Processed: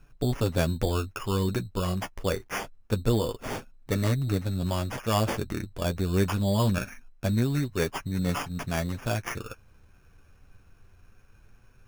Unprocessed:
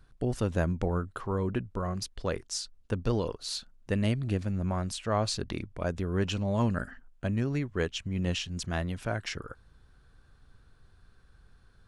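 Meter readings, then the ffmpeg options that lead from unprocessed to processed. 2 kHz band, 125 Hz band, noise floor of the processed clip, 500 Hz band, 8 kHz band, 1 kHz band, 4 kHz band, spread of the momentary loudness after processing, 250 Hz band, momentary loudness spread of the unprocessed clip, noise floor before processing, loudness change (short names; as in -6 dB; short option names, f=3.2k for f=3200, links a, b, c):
+3.0 dB, +3.5 dB, -57 dBFS, +3.0 dB, +1.5 dB, +3.5 dB, +0.5 dB, 9 LU, +3.0 dB, 7 LU, -61 dBFS, +3.0 dB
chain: -af "acrusher=samples=11:mix=1:aa=0.000001,flanger=delay=6.9:depth=3.7:regen=-27:speed=0.24:shape=sinusoidal,volume=6.5dB"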